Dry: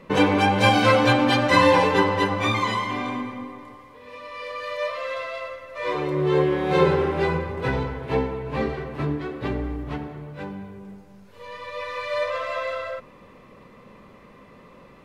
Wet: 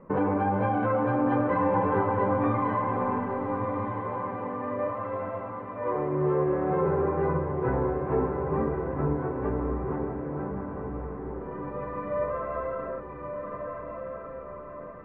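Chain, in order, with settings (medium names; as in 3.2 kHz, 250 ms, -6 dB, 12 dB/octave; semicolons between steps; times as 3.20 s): low-pass 1.4 kHz 24 dB/octave; peak limiter -14.5 dBFS, peak gain reduction 8.5 dB; on a send: echo that smears into a reverb 1286 ms, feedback 52%, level -5 dB; on the sum: trim -3 dB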